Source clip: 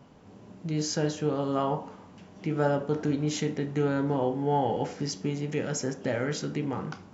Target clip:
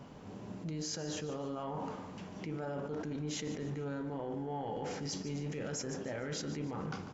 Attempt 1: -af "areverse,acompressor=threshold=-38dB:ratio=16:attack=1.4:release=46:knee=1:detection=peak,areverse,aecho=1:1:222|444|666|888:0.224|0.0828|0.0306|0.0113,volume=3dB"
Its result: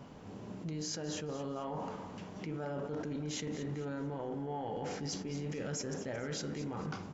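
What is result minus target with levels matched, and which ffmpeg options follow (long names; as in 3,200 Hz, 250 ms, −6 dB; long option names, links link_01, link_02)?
echo 75 ms late
-af "areverse,acompressor=threshold=-38dB:ratio=16:attack=1.4:release=46:knee=1:detection=peak,areverse,aecho=1:1:147|294|441|588:0.224|0.0828|0.0306|0.0113,volume=3dB"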